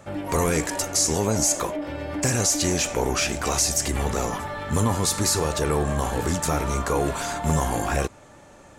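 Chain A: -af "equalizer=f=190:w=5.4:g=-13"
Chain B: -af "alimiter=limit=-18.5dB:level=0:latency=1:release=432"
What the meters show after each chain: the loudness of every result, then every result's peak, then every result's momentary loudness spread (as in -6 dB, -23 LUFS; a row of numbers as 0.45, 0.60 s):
-24.0, -29.5 LUFS; -10.0, -18.5 dBFS; 7, 4 LU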